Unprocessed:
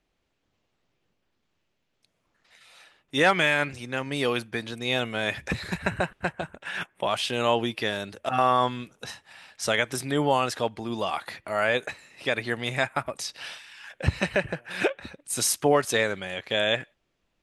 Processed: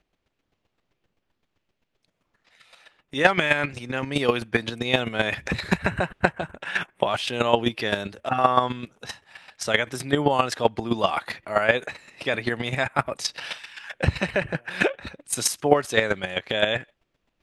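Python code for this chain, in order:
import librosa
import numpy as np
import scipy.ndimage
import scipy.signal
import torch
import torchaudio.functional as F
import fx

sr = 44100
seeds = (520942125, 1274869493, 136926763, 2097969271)

p1 = fx.high_shelf(x, sr, hz=6700.0, db=-7.5)
p2 = fx.rider(p1, sr, range_db=5, speed_s=0.5)
p3 = p1 + (p2 * librosa.db_to_amplitude(-0.5))
p4 = fx.chopper(p3, sr, hz=7.7, depth_pct=65, duty_pct=15)
y = p4 * librosa.db_to_amplitude(3.5)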